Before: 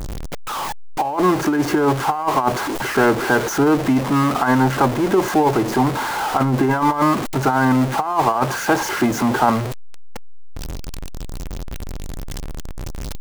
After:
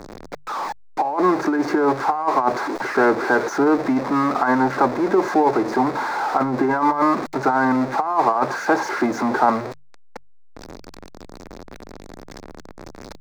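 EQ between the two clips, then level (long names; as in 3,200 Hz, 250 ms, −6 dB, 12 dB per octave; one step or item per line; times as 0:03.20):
three-way crossover with the lows and the highs turned down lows −16 dB, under 220 Hz, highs −19 dB, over 5,200 Hz
parametric band 3,000 Hz −14.5 dB 0.46 octaves
mains-hum notches 50/100/150 Hz
0.0 dB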